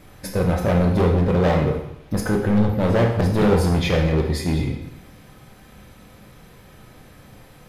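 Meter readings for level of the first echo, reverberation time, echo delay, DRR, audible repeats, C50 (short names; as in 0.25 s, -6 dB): none, 0.80 s, none, 1.5 dB, none, 6.0 dB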